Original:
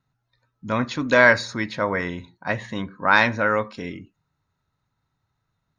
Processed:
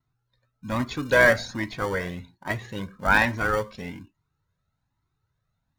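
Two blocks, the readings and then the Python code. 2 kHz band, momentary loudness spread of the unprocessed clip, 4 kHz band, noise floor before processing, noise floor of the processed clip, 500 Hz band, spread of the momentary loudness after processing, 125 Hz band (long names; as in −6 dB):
−3.0 dB, 17 LU, −3.5 dB, −77 dBFS, −79 dBFS, −2.5 dB, 18 LU, −0.5 dB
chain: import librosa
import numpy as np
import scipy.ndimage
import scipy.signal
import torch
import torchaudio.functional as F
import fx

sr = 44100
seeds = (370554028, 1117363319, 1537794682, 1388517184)

p1 = fx.sample_hold(x, sr, seeds[0], rate_hz=1300.0, jitter_pct=0)
p2 = x + F.gain(torch.from_numpy(p1), -9.0).numpy()
p3 = fx.vibrato(p2, sr, rate_hz=0.48, depth_cents=7.8)
y = fx.comb_cascade(p3, sr, direction='rising', hz=1.2)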